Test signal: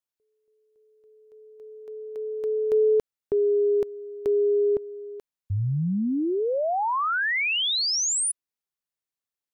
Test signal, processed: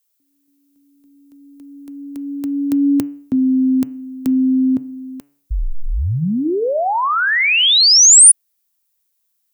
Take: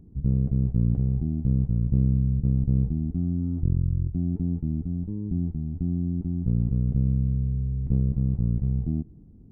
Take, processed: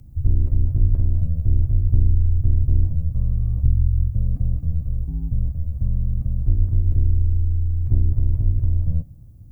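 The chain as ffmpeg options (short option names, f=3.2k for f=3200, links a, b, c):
-af "afreqshift=-150,aemphasis=mode=production:type=75kf,bandreject=f=142.7:t=h:w=4,bandreject=f=285.4:t=h:w=4,bandreject=f=428.1:t=h:w=4,bandreject=f=570.8:t=h:w=4,bandreject=f=713.5:t=h:w=4,bandreject=f=856.2:t=h:w=4,bandreject=f=998.9:t=h:w=4,bandreject=f=1.1416k:t=h:w=4,bandreject=f=1.2843k:t=h:w=4,bandreject=f=1.427k:t=h:w=4,bandreject=f=1.5697k:t=h:w=4,bandreject=f=1.7124k:t=h:w=4,bandreject=f=1.8551k:t=h:w=4,bandreject=f=1.9978k:t=h:w=4,bandreject=f=2.1405k:t=h:w=4,bandreject=f=2.2832k:t=h:w=4,bandreject=f=2.4259k:t=h:w=4,bandreject=f=2.5686k:t=h:w=4,bandreject=f=2.7113k:t=h:w=4,bandreject=f=2.854k:t=h:w=4,bandreject=f=2.9967k:t=h:w=4,volume=7dB"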